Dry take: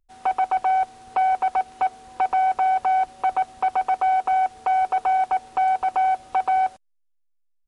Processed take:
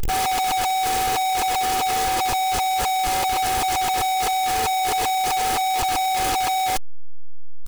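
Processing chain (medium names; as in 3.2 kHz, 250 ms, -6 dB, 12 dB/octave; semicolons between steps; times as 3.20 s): one-bit comparator; comb 2.4 ms, depth 45%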